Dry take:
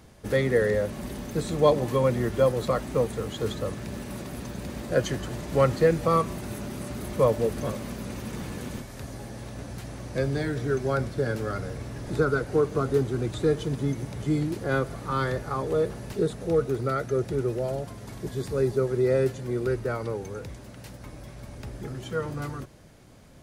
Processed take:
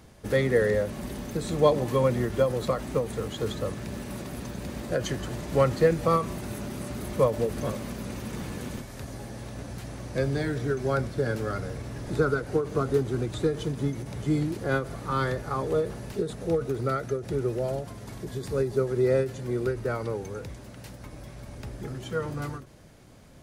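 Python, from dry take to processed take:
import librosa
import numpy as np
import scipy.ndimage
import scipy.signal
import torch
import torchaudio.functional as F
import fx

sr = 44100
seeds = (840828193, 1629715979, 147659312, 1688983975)

y = fx.end_taper(x, sr, db_per_s=140.0)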